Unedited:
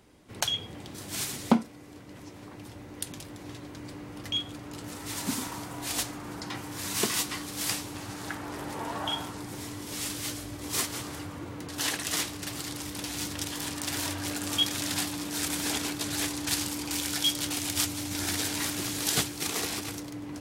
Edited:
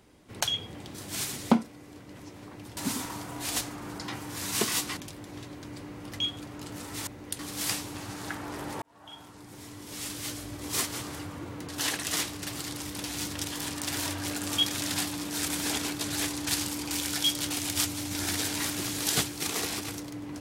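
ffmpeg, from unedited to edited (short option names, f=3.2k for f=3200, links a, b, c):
-filter_complex "[0:a]asplit=6[a][b][c][d][e][f];[a]atrim=end=2.772[g];[b]atrim=start=5.188:end=7.392[h];[c]atrim=start=3.088:end=5.192[i];[d]atrim=start=2.768:end=3.092[j];[e]atrim=start=7.388:end=8.82,asetpts=PTS-STARTPTS,afade=t=out:st=1.428:d=0.004:c=hsin[k];[f]atrim=start=8.82,asetpts=PTS-STARTPTS,afade=t=in:d=1.74[l];[g][h]acrossfade=d=0.004:c1=hsin:c2=hsin[m];[m][i]acrossfade=d=0.004:c1=hsin:c2=hsin[n];[n][j]acrossfade=d=0.004:c1=hsin:c2=hsin[o];[k][l]concat=n=2:v=0:a=1[p];[o][p]acrossfade=d=0.004:c1=hsin:c2=hsin"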